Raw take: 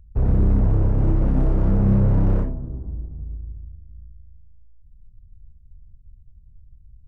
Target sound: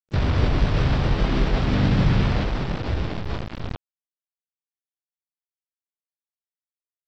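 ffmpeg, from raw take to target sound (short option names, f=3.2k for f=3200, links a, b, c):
-filter_complex "[0:a]asplit=2[a][b];[b]acompressor=threshold=-33dB:ratio=5,volume=2.5dB[c];[a][c]amix=inputs=2:normalize=0,alimiter=limit=-13.5dB:level=0:latency=1:release=169,flanger=delay=6.5:depth=6.1:regen=-26:speed=1.5:shape=triangular,aeval=exprs='val(0)+0.00158*sin(2*PI*660*n/s)':c=same,aresample=8000,acrusher=bits=4:mix=0:aa=0.000001,aresample=44100,asplit=4[d][e][f][g];[e]asetrate=55563,aresample=44100,atempo=0.793701,volume=-1dB[h];[f]asetrate=66075,aresample=44100,atempo=0.66742,volume=-4dB[i];[g]asetrate=88200,aresample=44100,atempo=0.5,volume=-16dB[j];[d][h][i][j]amix=inputs=4:normalize=0"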